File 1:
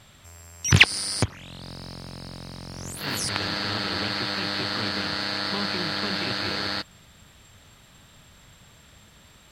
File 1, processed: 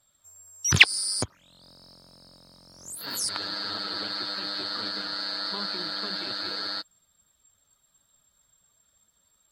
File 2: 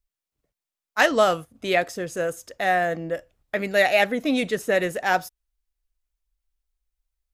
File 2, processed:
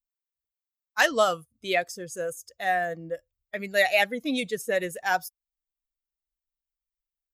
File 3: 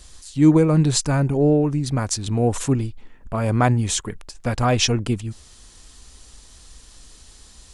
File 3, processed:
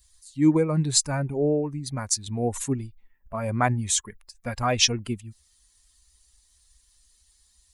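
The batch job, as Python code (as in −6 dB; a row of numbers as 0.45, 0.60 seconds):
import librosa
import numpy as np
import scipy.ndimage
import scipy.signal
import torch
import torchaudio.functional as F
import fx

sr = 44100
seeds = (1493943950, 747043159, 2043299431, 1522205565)

y = fx.bin_expand(x, sr, power=1.5)
y = fx.tilt_eq(y, sr, slope=1.5)
y = y * 10.0 ** (-1.5 / 20.0)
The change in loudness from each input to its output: −2.0, −3.5, −5.0 LU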